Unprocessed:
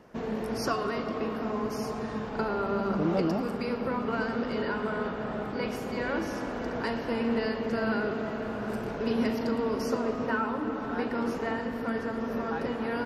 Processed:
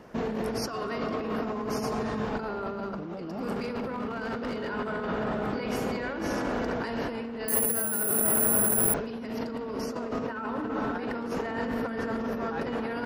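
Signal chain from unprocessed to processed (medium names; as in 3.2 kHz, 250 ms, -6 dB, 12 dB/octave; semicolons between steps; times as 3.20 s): compressor with a negative ratio -34 dBFS, ratio -1; 3.54–4.70 s: hard clipper -29.5 dBFS, distortion -26 dB; 7.48–8.94 s: careless resampling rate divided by 4×, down filtered, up zero stuff; trim +2 dB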